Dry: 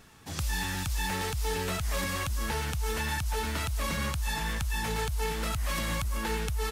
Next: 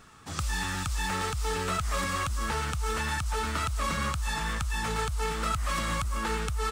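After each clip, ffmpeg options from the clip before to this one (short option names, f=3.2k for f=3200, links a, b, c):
-af "equalizer=f=1.25k:t=o:w=0.33:g=11,equalizer=f=8k:t=o:w=0.33:g=4,equalizer=f=12.5k:t=o:w=0.33:g=-12"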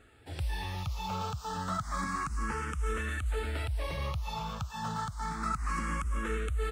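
-filter_complex "[0:a]highshelf=f=2.3k:g=-8.5,asplit=2[a][b];[b]afreqshift=0.3[c];[a][c]amix=inputs=2:normalize=1"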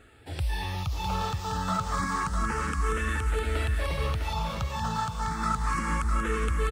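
-af "aecho=1:1:654:0.501,volume=4.5dB"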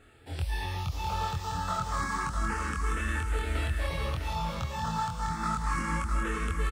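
-filter_complex "[0:a]asplit=2[a][b];[b]adelay=24,volume=-2.5dB[c];[a][c]amix=inputs=2:normalize=0,volume=-4dB"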